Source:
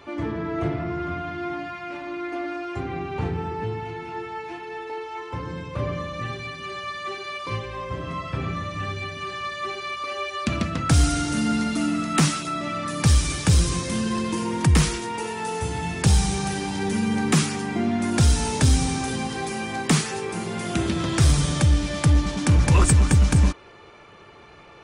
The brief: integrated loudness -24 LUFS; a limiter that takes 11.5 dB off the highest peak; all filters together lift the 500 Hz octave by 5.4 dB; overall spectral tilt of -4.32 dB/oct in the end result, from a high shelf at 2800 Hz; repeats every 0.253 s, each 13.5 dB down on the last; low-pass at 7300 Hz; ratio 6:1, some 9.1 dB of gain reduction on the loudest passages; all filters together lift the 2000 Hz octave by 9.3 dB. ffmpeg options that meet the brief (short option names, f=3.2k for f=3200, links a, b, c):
-af "lowpass=7.3k,equalizer=f=500:t=o:g=6.5,equalizer=f=2k:t=o:g=9,highshelf=f=2.8k:g=5.5,acompressor=threshold=-22dB:ratio=6,alimiter=limit=-20.5dB:level=0:latency=1,aecho=1:1:253|506:0.211|0.0444,volume=4.5dB"